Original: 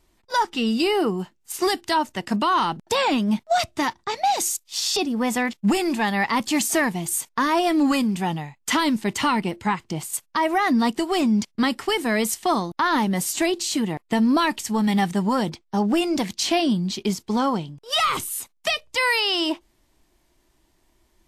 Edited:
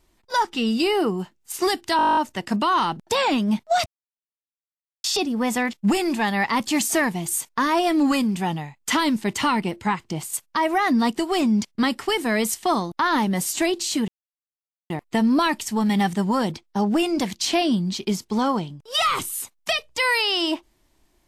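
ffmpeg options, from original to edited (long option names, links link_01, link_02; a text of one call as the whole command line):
ffmpeg -i in.wav -filter_complex "[0:a]asplit=14[link_01][link_02][link_03][link_04][link_05][link_06][link_07][link_08][link_09][link_10][link_11][link_12][link_13][link_14];[link_01]atrim=end=1.992[link_15];[link_02]atrim=start=1.968:end=1.992[link_16];[link_03]atrim=start=1.968:end=1.992[link_17];[link_04]atrim=start=1.968:end=1.992[link_18];[link_05]atrim=start=1.968:end=1.992[link_19];[link_06]atrim=start=1.968:end=1.992[link_20];[link_07]atrim=start=1.968:end=1.992[link_21];[link_08]atrim=start=1.968:end=1.992[link_22];[link_09]atrim=start=1.968:end=1.992[link_23];[link_10]atrim=start=1.968:end=1.992[link_24];[link_11]atrim=start=1.968:end=3.66,asetpts=PTS-STARTPTS,afade=type=out:start_time=1.688:duration=0.004:curve=hsin[link_25];[link_12]atrim=start=3.66:end=4.84,asetpts=PTS-STARTPTS,volume=0[link_26];[link_13]atrim=start=4.84:end=13.88,asetpts=PTS-STARTPTS,afade=type=in:duration=0.004:curve=hsin,afade=type=out:start_time=9.036:duration=0.004:curve=hsin,apad=pad_dur=0.82[link_27];[link_14]atrim=start=13.88,asetpts=PTS-STARTPTS,afade=type=in:duration=0.004:curve=hsin[link_28];[link_15][link_16]acrossfade=duration=0.004:curve1=hsin:curve2=hsin[link_29];[link_29][link_17]acrossfade=duration=0.004:curve1=hsin:curve2=hsin[link_30];[link_30][link_18]acrossfade=duration=0.004:curve1=hsin:curve2=hsin[link_31];[link_31][link_19]acrossfade=duration=0.004:curve1=hsin:curve2=hsin[link_32];[link_32][link_20]acrossfade=duration=0.004:curve1=hsin:curve2=hsin[link_33];[link_33][link_21]acrossfade=duration=0.004:curve1=hsin:curve2=hsin[link_34];[link_34][link_22]acrossfade=duration=0.004:curve1=hsin:curve2=hsin[link_35];[link_35][link_23]acrossfade=duration=0.004:curve1=hsin:curve2=hsin[link_36];[link_36][link_24]acrossfade=duration=0.004:curve1=hsin:curve2=hsin[link_37];[link_25][link_26][link_27][link_28]concat=n=4:v=0:a=1[link_38];[link_37][link_38]acrossfade=duration=0.004:curve1=hsin:curve2=hsin" out.wav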